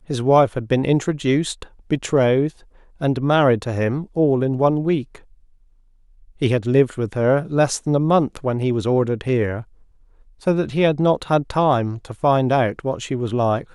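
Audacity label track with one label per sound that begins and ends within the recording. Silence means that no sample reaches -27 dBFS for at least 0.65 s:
6.420000	9.610000	sound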